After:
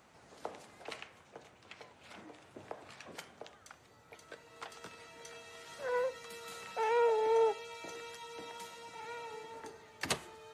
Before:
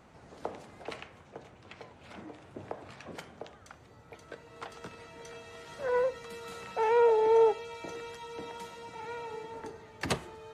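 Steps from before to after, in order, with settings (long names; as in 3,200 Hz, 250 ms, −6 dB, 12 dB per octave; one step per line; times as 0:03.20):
spectral tilt +2 dB per octave
level −4 dB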